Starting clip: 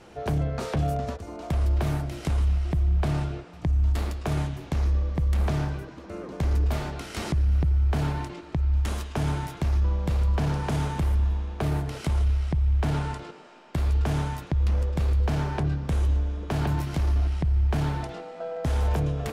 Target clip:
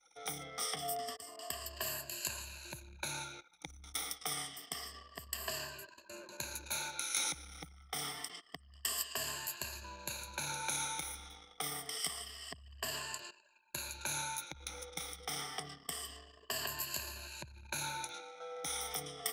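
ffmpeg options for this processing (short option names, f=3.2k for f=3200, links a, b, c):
-af "afftfilt=real='re*pow(10,19/40*sin(2*PI*(1.4*log(max(b,1)*sr/1024/100)/log(2)-(-0.27)*(pts-256)/sr)))':imag='im*pow(10,19/40*sin(2*PI*(1.4*log(max(b,1)*sr/1024/100)/log(2)-(-0.27)*(pts-256)/sr)))':win_size=1024:overlap=0.75,aderivative,anlmdn=0.000251,volume=4dB"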